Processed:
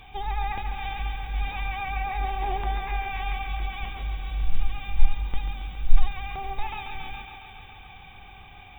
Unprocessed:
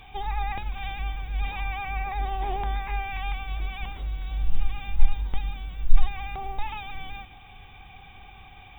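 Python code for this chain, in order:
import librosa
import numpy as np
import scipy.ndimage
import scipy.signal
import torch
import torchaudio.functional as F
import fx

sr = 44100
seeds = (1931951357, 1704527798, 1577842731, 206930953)

y = fx.echo_thinned(x, sr, ms=138, feedback_pct=79, hz=180.0, wet_db=-8)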